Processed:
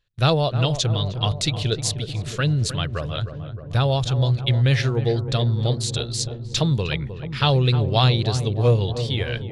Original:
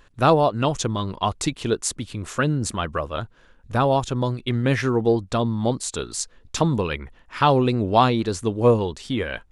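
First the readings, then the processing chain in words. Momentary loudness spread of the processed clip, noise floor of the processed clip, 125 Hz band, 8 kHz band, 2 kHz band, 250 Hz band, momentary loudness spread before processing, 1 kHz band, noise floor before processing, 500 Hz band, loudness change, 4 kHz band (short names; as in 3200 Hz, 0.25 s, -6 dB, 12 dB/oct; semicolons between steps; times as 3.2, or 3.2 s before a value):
8 LU, -35 dBFS, +6.5 dB, -0.5 dB, -0.5 dB, -3.5 dB, 11 LU, -6.5 dB, -54 dBFS, -3.5 dB, +0.5 dB, +7.0 dB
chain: gate with hold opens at -39 dBFS; ten-band EQ 125 Hz +9 dB, 250 Hz -11 dB, 1000 Hz -9 dB, 4000 Hz +10 dB, 8000 Hz -4 dB; on a send: darkening echo 0.309 s, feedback 78%, low-pass 1100 Hz, level -9.5 dB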